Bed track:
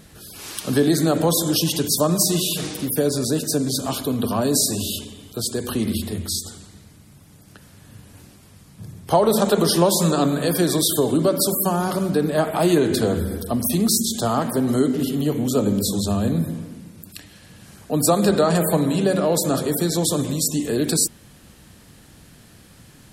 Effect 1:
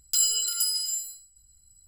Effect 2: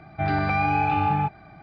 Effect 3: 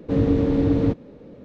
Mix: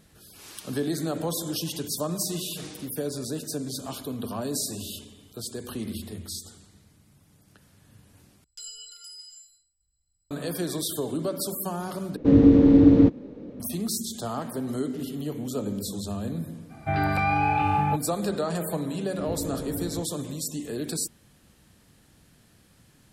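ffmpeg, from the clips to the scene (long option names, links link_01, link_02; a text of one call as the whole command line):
ffmpeg -i bed.wav -i cue0.wav -i cue1.wav -i cue2.wav -filter_complex "[3:a]asplit=2[link_01][link_02];[0:a]volume=-10.5dB[link_03];[1:a]lowpass=6100[link_04];[link_01]equalizer=frequency=280:width=1.5:gain=8[link_05];[link_03]asplit=3[link_06][link_07][link_08];[link_06]atrim=end=8.444[link_09];[link_04]atrim=end=1.87,asetpts=PTS-STARTPTS,volume=-13.5dB[link_10];[link_07]atrim=start=10.306:end=12.164[link_11];[link_05]atrim=end=1.44,asetpts=PTS-STARTPTS,volume=-1.5dB[link_12];[link_08]atrim=start=13.596[link_13];[2:a]atrim=end=1.62,asetpts=PTS-STARTPTS,volume=-1dB,afade=type=in:duration=0.05,afade=type=out:start_time=1.57:duration=0.05,adelay=735588S[link_14];[link_02]atrim=end=1.44,asetpts=PTS-STARTPTS,volume=-15dB,afade=type=in:duration=0.004:curve=hsin,afade=type=out:start_time=1.436:duration=0.004:curve=hsin,adelay=19100[link_15];[link_09][link_10]acrossfade=duration=0.004:curve1=hsin:curve2=hsin[link_16];[link_16][link_11]acrossfade=duration=0.004:curve1=hsin:curve2=hsin[link_17];[link_17][link_12]acrossfade=duration=0.004:curve1=hsin:curve2=hsin[link_18];[link_18][link_13]acrossfade=duration=0.004:curve1=hsin:curve2=hsin[link_19];[link_19][link_14][link_15]amix=inputs=3:normalize=0" out.wav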